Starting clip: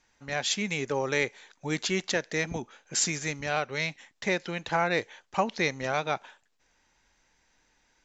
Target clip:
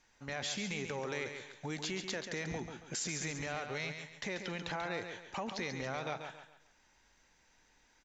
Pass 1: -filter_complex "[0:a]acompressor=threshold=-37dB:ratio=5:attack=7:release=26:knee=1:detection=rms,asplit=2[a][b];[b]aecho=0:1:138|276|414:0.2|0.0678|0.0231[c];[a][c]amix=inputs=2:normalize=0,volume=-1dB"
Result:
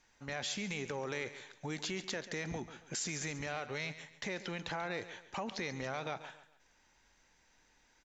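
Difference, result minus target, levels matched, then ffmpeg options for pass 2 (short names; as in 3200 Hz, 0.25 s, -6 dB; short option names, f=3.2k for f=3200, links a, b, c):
echo-to-direct -6.5 dB
-filter_complex "[0:a]acompressor=threshold=-37dB:ratio=5:attack=7:release=26:knee=1:detection=rms,asplit=2[a][b];[b]aecho=0:1:138|276|414|552:0.422|0.143|0.0487|0.0166[c];[a][c]amix=inputs=2:normalize=0,volume=-1dB"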